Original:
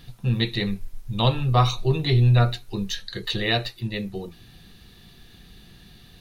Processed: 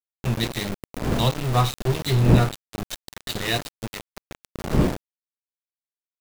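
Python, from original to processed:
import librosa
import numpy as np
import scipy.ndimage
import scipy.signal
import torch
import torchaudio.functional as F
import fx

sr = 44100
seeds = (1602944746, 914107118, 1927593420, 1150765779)

y = fx.dmg_wind(x, sr, seeds[0], corner_hz=300.0, level_db=-27.0)
y = fx.echo_feedback(y, sr, ms=900, feedback_pct=30, wet_db=-24.0)
y = np.where(np.abs(y) >= 10.0 ** (-22.5 / 20.0), y, 0.0)
y = y * 10.0 ** (-1.5 / 20.0)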